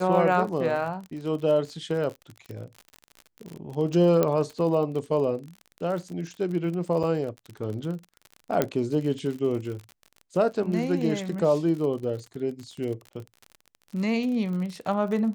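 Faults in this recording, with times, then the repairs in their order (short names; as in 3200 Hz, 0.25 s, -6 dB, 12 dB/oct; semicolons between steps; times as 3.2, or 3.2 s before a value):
crackle 46/s -33 dBFS
4.23 pop -10 dBFS
7.03–7.04 gap 6.6 ms
8.62 pop -9 dBFS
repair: de-click; interpolate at 7.03, 6.6 ms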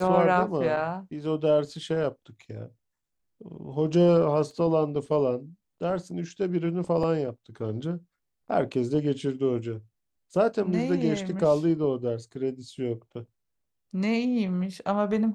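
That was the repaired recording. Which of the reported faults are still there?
none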